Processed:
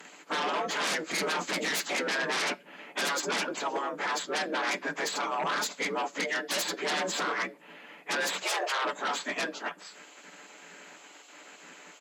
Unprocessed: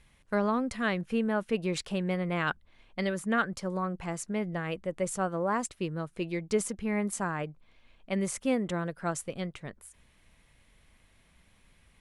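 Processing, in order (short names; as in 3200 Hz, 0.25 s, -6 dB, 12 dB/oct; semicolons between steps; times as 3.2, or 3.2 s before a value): inharmonic rescaling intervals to 90%; spectral gate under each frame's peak -15 dB weak; bell 5600 Hz -8 dB 0.24 oct; comb 6.9 ms, depth 41%; 1.11–1.8 tone controls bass +10 dB, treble +6 dB; sine folder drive 14 dB, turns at -29 dBFS; elliptic high-pass 180 Hz, stop band 40 dB; 8.43–8.85 frequency shift +170 Hz; reverb RT60 0.35 s, pre-delay 3 ms, DRR 16 dB; gain +3.5 dB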